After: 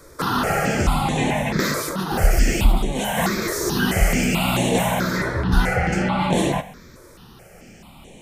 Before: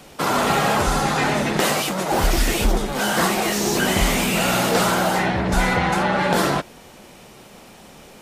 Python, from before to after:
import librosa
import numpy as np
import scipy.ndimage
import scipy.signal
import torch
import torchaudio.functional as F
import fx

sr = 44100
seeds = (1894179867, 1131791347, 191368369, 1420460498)

y = fx.low_shelf(x, sr, hz=230.0, db=6.0)
y = fx.rev_plate(y, sr, seeds[0], rt60_s=0.64, hf_ratio=1.0, predelay_ms=0, drr_db=12.0)
y = fx.phaser_held(y, sr, hz=4.6, low_hz=770.0, high_hz=4900.0)